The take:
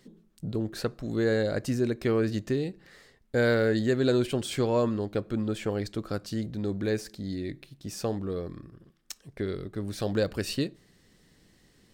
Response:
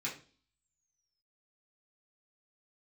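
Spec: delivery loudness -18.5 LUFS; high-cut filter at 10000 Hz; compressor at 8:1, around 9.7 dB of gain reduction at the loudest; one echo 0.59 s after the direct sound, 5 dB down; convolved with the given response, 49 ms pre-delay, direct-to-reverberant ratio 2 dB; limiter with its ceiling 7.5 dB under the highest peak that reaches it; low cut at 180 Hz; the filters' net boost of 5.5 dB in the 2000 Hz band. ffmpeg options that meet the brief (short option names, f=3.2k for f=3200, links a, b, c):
-filter_complex "[0:a]highpass=180,lowpass=10k,equalizer=f=2k:t=o:g=7.5,acompressor=threshold=-29dB:ratio=8,alimiter=level_in=0.5dB:limit=-24dB:level=0:latency=1,volume=-0.5dB,aecho=1:1:590:0.562,asplit=2[a][b];[1:a]atrim=start_sample=2205,adelay=49[c];[b][c]afir=irnorm=-1:irlink=0,volume=-4.5dB[d];[a][d]amix=inputs=2:normalize=0,volume=15.5dB"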